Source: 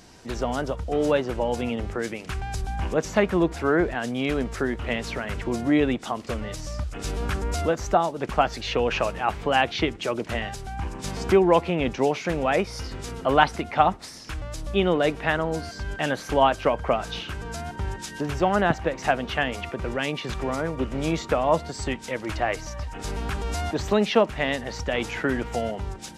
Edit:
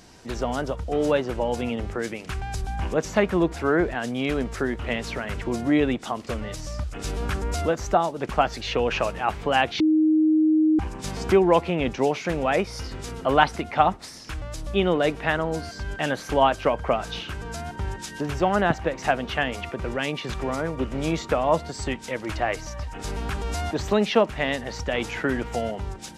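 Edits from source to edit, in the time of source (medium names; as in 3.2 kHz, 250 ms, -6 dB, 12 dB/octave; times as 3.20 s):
9.80–10.79 s: bleep 312 Hz -15.5 dBFS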